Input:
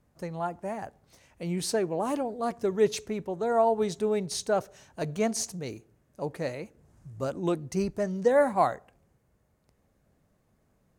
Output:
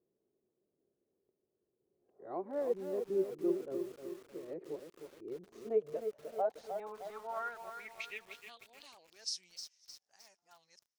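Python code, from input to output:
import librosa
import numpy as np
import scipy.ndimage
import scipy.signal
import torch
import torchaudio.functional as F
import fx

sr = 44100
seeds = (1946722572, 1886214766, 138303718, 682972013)

y = np.flip(x).copy()
y = fx.dynamic_eq(y, sr, hz=2700.0, q=0.79, threshold_db=-47.0, ratio=4.0, max_db=5)
y = fx.filter_sweep_bandpass(y, sr, from_hz=380.0, to_hz=5400.0, start_s=5.6, end_s=9.19, q=6.6)
y = fx.echo_crushed(y, sr, ms=308, feedback_pct=55, bits=9, wet_db=-7)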